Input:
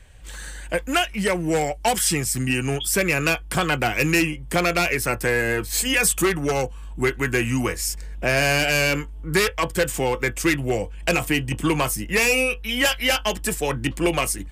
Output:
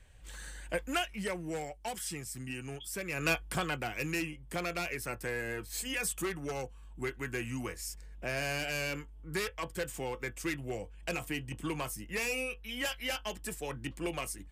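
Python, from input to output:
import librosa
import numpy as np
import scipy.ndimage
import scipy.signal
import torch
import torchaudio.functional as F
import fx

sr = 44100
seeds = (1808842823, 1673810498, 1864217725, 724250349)

y = fx.gain(x, sr, db=fx.line((0.79, -10.0), (1.79, -18.0), (3.07, -18.0), (3.32, -7.5), (3.86, -15.0)))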